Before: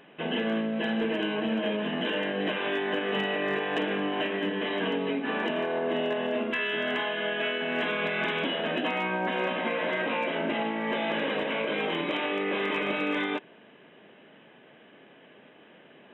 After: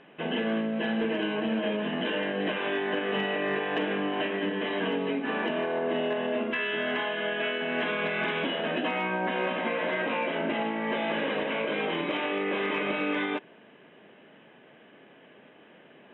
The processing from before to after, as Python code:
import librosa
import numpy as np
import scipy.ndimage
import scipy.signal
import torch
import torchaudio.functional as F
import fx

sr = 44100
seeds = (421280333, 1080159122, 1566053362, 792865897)

y = scipy.signal.sosfilt(scipy.signal.butter(2, 3700.0, 'lowpass', fs=sr, output='sos'), x)